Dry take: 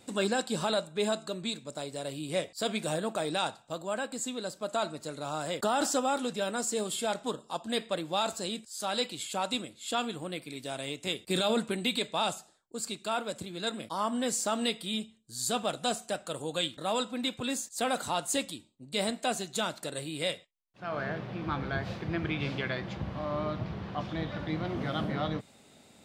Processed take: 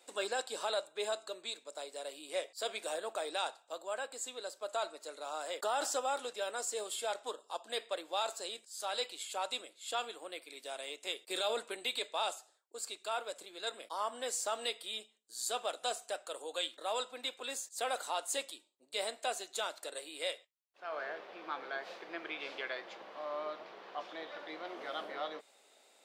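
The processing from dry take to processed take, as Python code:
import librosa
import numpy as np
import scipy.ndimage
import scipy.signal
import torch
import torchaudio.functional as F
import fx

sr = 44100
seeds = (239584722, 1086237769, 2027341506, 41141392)

y = scipy.signal.sosfilt(scipy.signal.butter(4, 420.0, 'highpass', fs=sr, output='sos'), x)
y = y * librosa.db_to_amplitude(-5.0)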